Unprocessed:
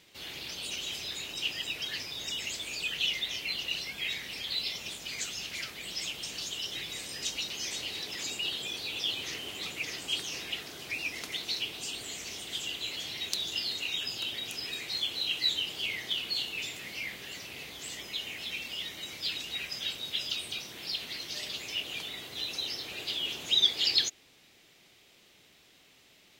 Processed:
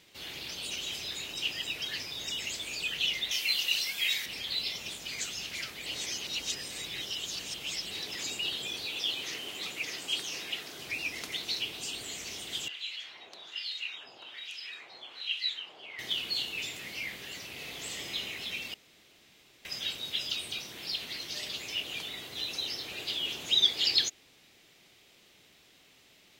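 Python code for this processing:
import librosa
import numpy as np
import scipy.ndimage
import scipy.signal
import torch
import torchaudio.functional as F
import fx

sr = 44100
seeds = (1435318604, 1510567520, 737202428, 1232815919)

y = fx.tilt_eq(x, sr, slope=3.0, at=(3.31, 4.26))
y = fx.highpass(y, sr, hz=200.0, slope=6, at=(8.85, 10.77))
y = fx.filter_lfo_bandpass(y, sr, shape='sine', hz=1.2, low_hz=730.0, high_hz=3000.0, q=1.5, at=(12.68, 15.99))
y = fx.reverb_throw(y, sr, start_s=17.54, length_s=0.61, rt60_s=2.6, drr_db=0.0)
y = fx.edit(y, sr, fx.reverse_span(start_s=5.86, length_s=2.05),
    fx.room_tone_fill(start_s=18.74, length_s=0.91), tone=tone)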